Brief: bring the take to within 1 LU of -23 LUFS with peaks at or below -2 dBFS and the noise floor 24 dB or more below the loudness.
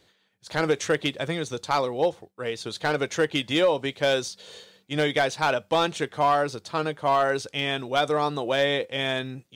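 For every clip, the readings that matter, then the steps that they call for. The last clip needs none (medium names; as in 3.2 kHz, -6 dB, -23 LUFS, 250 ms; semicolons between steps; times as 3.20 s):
clipped samples 0.3%; clipping level -13.5 dBFS; loudness -25.5 LUFS; peak level -13.5 dBFS; loudness target -23.0 LUFS
-> clip repair -13.5 dBFS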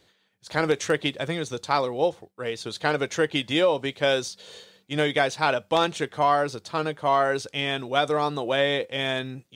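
clipped samples 0.0%; loudness -25.0 LUFS; peak level -6.0 dBFS; loudness target -23.0 LUFS
-> trim +2 dB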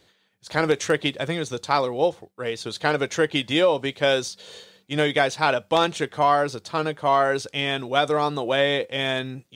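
loudness -23.0 LUFS; peak level -4.0 dBFS; noise floor -65 dBFS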